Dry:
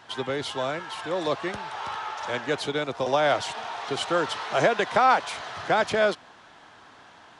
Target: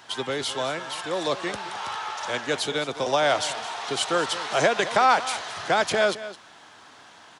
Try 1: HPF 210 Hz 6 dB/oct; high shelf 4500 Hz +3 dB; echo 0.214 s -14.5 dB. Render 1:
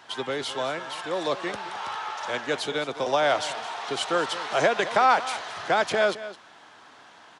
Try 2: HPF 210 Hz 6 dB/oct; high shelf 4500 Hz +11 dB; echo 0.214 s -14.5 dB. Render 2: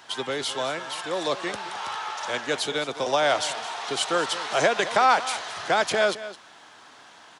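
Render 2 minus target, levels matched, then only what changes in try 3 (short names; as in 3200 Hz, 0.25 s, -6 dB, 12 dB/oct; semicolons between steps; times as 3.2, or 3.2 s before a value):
125 Hz band -3.0 dB
change: HPF 91 Hz 6 dB/oct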